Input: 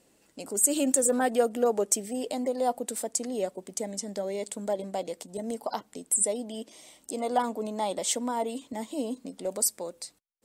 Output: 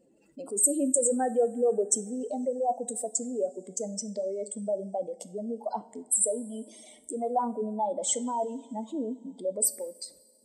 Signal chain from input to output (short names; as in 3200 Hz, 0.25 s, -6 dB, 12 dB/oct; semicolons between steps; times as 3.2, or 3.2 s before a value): spectral contrast raised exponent 2.2; two-slope reverb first 0.43 s, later 2.8 s, from -18 dB, DRR 11 dB